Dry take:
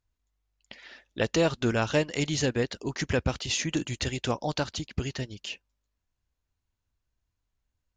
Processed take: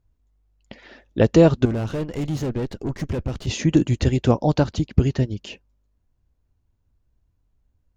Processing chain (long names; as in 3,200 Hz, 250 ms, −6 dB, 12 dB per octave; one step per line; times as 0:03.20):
0:01.65–0:03.47: tube saturation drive 34 dB, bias 0.65
tilt shelving filter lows +8.5 dB, about 900 Hz
level +6 dB